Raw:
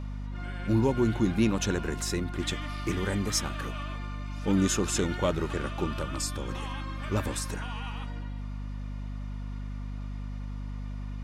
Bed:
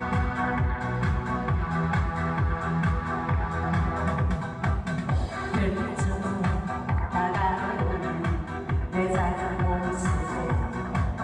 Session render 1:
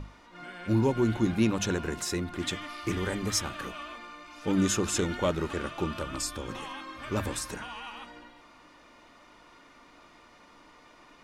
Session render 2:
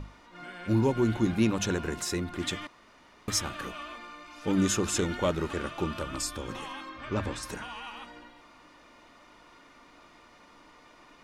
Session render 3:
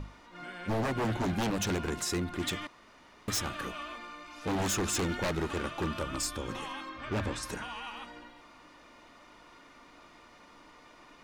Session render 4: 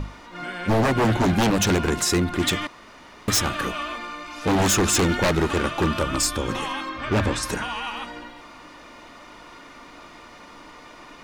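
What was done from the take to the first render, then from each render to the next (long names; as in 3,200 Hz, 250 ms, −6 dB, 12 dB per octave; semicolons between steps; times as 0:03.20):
mains-hum notches 50/100/150/200/250 Hz
0:02.67–0:03.28: fill with room tone; 0:06.89–0:07.43: high-frequency loss of the air 93 metres
wave folding −25 dBFS
level +11 dB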